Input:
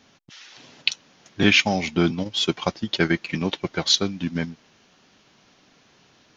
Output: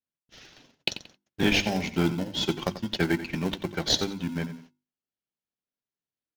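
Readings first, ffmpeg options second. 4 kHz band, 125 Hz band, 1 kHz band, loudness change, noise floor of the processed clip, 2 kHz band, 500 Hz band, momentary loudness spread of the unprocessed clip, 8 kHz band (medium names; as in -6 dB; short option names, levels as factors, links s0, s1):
-6.0 dB, -3.5 dB, -5.0 dB, -5.5 dB, under -85 dBFS, -7.0 dB, -4.0 dB, 11 LU, -5.5 dB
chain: -filter_complex "[0:a]aecho=1:1:89|178|267:0.211|0.0571|0.0154,acrossover=split=500|3000[s0][s1][s2];[s1]acompressor=threshold=0.0891:ratio=6[s3];[s0][s3][s2]amix=inputs=3:normalize=0,agate=range=0.0126:threshold=0.00501:ratio=16:detection=peak,bandreject=f=50:t=h:w=6,bandreject=f=100:t=h:w=6,bandreject=f=150:t=h:w=6,bandreject=f=200:t=h:w=6,bandreject=f=250:t=h:w=6,bandreject=f=300:t=h:w=6,bandreject=f=350:t=h:w=6,asplit=2[s4][s5];[s5]acrusher=samples=37:mix=1:aa=0.000001,volume=0.473[s6];[s4][s6]amix=inputs=2:normalize=0,volume=0.501"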